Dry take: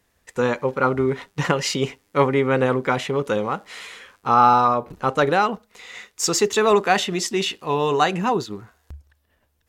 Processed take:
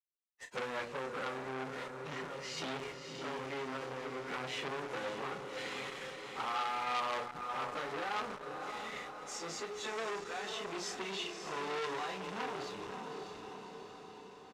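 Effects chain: high-pass 180 Hz 6 dB/octave; bass shelf 350 Hz -3.5 dB; hum notches 60/120/180/240/300/360/420/480 Hz; compression 4:1, threshold -26 dBFS, peak gain reduction 13 dB; peak limiter -20.5 dBFS, peak gain reduction 10.5 dB; bit crusher 7-bit; random-step tremolo; plain phase-vocoder stretch 1.5×; distance through air 74 m; doubling 31 ms -8 dB; echo that smears into a reverb 588 ms, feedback 57%, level -7 dB; transformer saturation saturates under 2.5 kHz

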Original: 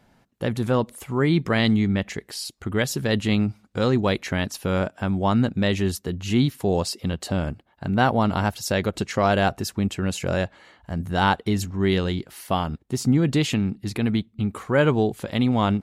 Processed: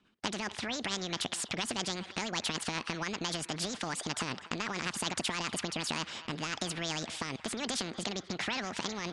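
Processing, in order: gate -51 dBFS, range -26 dB; graphic EQ 125/250/1000/2000/8000 Hz +10/-5/+9/+9/-8 dB; peak limiter -9.5 dBFS, peak gain reduction 11.5 dB; compression 10:1, threshold -25 dBFS, peak gain reduction 12 dB; rotary cabinet horn 6 Hz, later 0.65 Hz, at 9.25 s; on a send: band-passed feedback delay 420 ms, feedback 67%, band-pass 880 Hz, level -22 dB; on the sum: speed mistake 45 rpm record played at 78 rpm; resampled via 22.05 kHz; spectrum-flattening compressor 2:1

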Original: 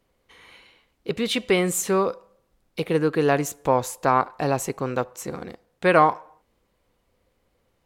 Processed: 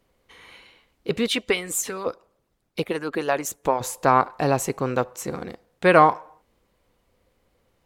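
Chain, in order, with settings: 1.26–3.81 s: harmonic-percussive split harmonic -16 dB; trim +2 dB

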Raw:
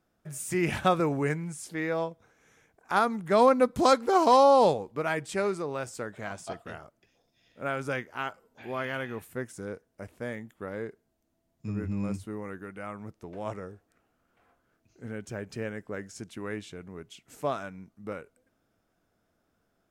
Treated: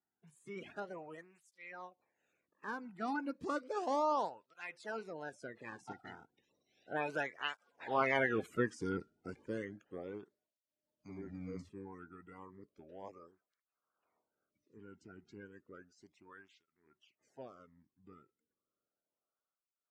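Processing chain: coarse spectral quantiser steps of 30 dB; Doppler pass-by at 8.24 s, 32 m/s, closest 20 m; low-pass 5.6 kHz 12 dB/octave; cancelling through-zero flanger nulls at 0.33 Hz, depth 1.9 ms; trim +5.5 dB

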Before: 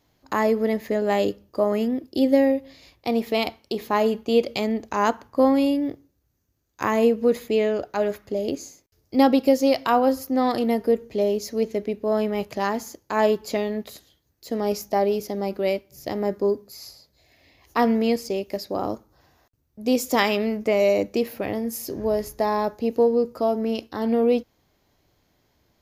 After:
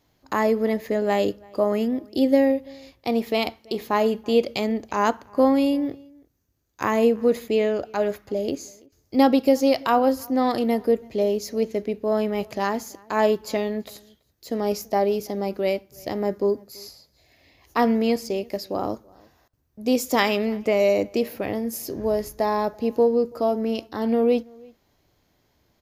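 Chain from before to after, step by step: echo from a far wall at 57 m, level -26 dB

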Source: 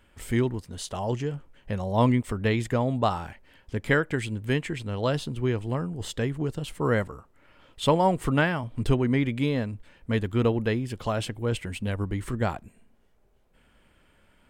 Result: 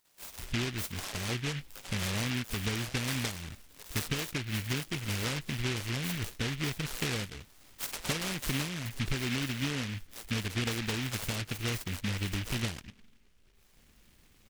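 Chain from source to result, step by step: compression, threshold -29 dBFS, peak gain reduction 13 dB; three bands offset in time highs, mids, lows 50/220 ms, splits 750/2800 Hz; delay time shaken by noise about 2.3 kHz, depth 0.41 ms

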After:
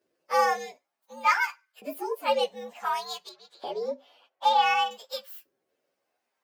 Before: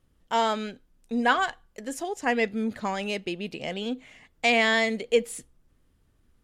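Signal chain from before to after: frequency axis rescaled in octaves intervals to 119%; LFO high-pass saw up 0.55 Hz 390–1600 Hz; 3.29–4.91 s: tone controls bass -6 dB, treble -14 dB

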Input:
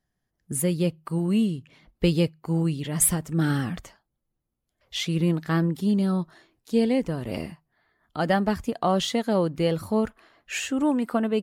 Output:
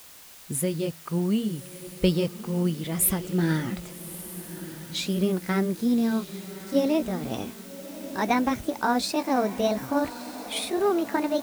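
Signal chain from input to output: pitch bend over the whole clip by +5.5 st starting unshifted; word length cut 8-bit, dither triangular; echo that smears into a reverb 1209 ms, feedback 41%, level -13.5 dB

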